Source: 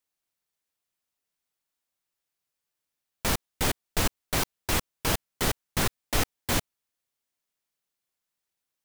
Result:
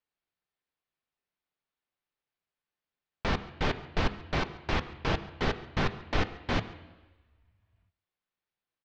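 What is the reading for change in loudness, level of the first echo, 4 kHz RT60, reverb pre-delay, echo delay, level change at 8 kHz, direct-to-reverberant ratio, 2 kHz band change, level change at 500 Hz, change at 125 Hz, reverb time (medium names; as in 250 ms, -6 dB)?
-4.0 dB, -22.0 dB, 1.3 s, 3 ms, 138 ms, -21.5 dB, 10.0 dB, -1.5 dB, -0.5 dB, -0.5 dB, 1.2 s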